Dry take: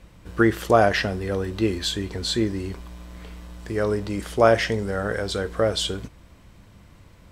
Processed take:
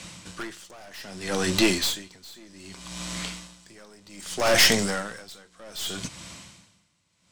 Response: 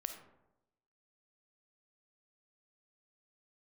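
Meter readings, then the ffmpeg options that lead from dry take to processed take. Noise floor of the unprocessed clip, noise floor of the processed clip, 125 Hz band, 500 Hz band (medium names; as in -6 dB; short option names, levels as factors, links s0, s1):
-51 dBFS, -68 dBFS, -9.0 dB, -8.5 dB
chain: -filter_complex "[0:a]acrossover=split=190[s0][s1];[s0]alimiter=level_in=2:limit=0.0631:level=0:latency=1,volume=0.501[s2];[s2][s1]amix=inputs=2:normalize=0,crystalizer=i=9:c=0,highpass=110,equalizer=f=170:t=q:w=4:g=6,equalizer=f=440:t=q:w=4:g=-6,equalizer=f=1700:t=q:w=4:g=-3,lowpass=f=8400:w=0.5412,lowpass=f=8400:w=1.3066,aeval=exprs='(tanh(11.2*val(0)+0.45)-tanh(0.45))/11.2':c=same,aeval=exprs='val(0)*pow(10,-30*(0.5-0.5*cos(2*PI*0.64*n/s))/20)':c=same,volume=2.37"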